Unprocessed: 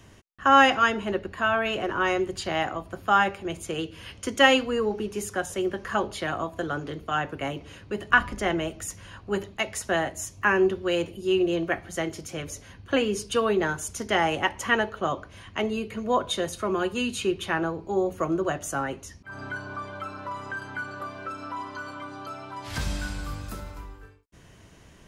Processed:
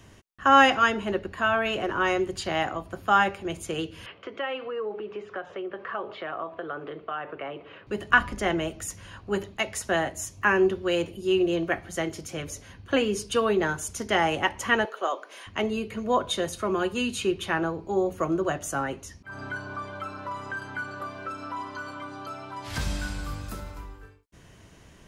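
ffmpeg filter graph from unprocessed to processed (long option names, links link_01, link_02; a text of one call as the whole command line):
ffmpeg -i in.wav -filter_complex "[0:a]asettb=1/sr,asplit=3[link_01][link_02][link_03];[link_01]atrim=end=4.064[link_04];[link_02]atrim=start=4.06:end=7.87,asetpts=PTS-STARTPTS,afade=type=in:duration=0.004:curve=qsin,afade=type=out:start_time=3.806:duration=0.004:curve=qsin,acompressor=threshold=-33dB:ratio=3:attack=3.2:release=140:knee=1:detection=peak,highpass=220,equalizer=frequency=240:width_type=q:width=4:gain=-9,equalizer=frequency=440:width_type=q:width=4:gain=4,equalizer=frequency=630:width_type=q:width=4:gain=4,equalizer=frequency=1200:width_type=q:width=4:gain=6,lowpass=frequency=3100:width=0.5412,lowpass=frequency=3100:width=1.3066[link_05];[link_03]atrim=start=7.866[link_06];[link_04][link_05]acrossfade=duration=0.004:curve1=hsin:curve2=qsin[link_07];[link_07][link_06]acrossfade=duration=0.004:curve1=qsin:curve2=hsin,asettb=1/sr,asplit=3[link_08][link_09][link_10];[link_08]atrim=end=14.854[link_11];[link_09]atrim=start=14.85:end=15.47,asetpts=PTS-STARTPTS,afade=type=in:duration=0.004:curve=qsin,afade=type=out:start_time=0.616:duration=0.004:curve=qsin,highpass=frequency=390:width=0.5412,highpass=frequency=390:width=1.3066,highshelf=frequency=11000:gain=4.5,acompressor=mode=upward:threshold=-37dB:ratio=2.5:attack=3.2:release=140:knee=2.83:detection=peak[link_12];[link_10]atrim=start=15.466[link_13];[link_11][link_12]acrossfade=duration=0.004:curve1=hsin:curve2=qsin[link_14];[link_14][link_13]acrossfade=duration=0.004:curve1=qsin:curve2=hsin" out.wav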